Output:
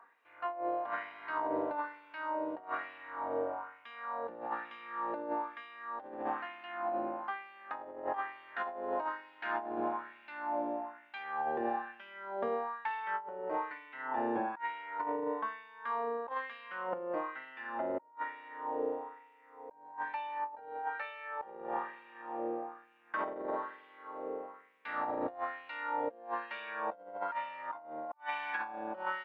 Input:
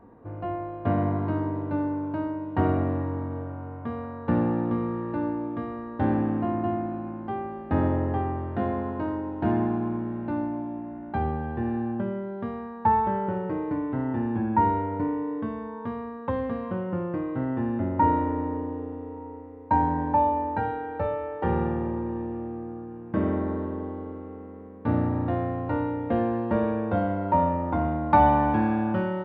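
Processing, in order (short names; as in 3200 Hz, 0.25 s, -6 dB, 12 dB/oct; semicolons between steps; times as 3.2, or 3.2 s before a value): LFO high-pass sine 1.1 Hz 500–2600 Hz; negative-ratio compressor -32 dBFS, ratio -0.5; gain -4.5 dB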